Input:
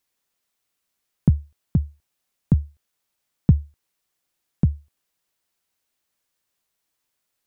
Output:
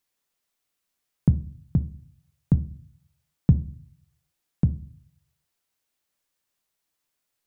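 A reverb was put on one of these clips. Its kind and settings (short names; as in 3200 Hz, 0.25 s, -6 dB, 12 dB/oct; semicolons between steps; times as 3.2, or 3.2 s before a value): shoebox room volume 350 m³, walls furnished, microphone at 0.36 m; gain -2.5 dB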